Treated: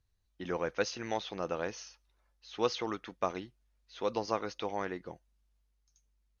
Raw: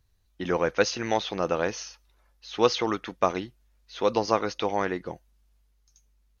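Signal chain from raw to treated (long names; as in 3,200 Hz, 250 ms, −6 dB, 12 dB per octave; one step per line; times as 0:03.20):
low-pass filter 11,000 Hz 12 dB per octave
level −9 dB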